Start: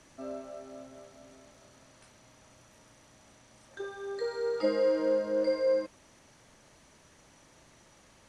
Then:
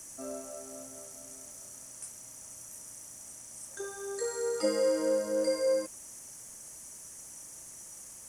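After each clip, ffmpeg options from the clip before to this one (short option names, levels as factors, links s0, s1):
-af "aexciter=amount=7.7:drive=9.2:freq=6000,volume=0.891"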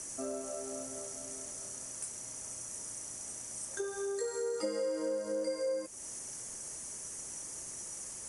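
-af "equalizer=f=400:t=o:w=0.48:g=5,acompressor=threshold=0.01:ratio=3,volume=1.68" -ar 24000 -c:a libmp3lame -b:a 56k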